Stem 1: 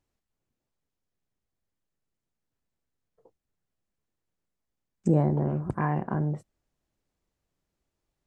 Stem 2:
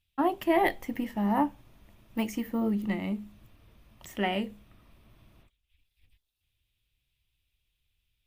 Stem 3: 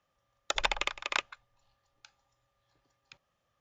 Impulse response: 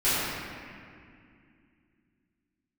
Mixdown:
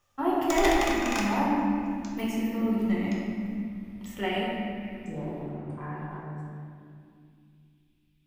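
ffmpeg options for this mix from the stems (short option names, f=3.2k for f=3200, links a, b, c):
-filter_complex "[0:a]lowshelf=f=480:g=-9.5,volume=-15.5dB,asplit=2[a][b];[b]volume=-6dB[c];[1:a]volume=-7dB,asplit=2[d][e];[e]volume=-7.5dB[f];[2:a]highshelf=f=5k:t=q:w=1.5:g=7,asoftclip=type=tanh:threshold=-26.5dB,volume=0.5dB,asplit=2[g][h];[h]volume=-10dB[i];[3:a]atrim=start_sample=2205[j];[c][f][i]amix=inputs=3:normalize=0[k];[k][j]afir=irnorm=-1:irlink=0[l];[a][d][g][l]amix=inputs=4:normalize=0"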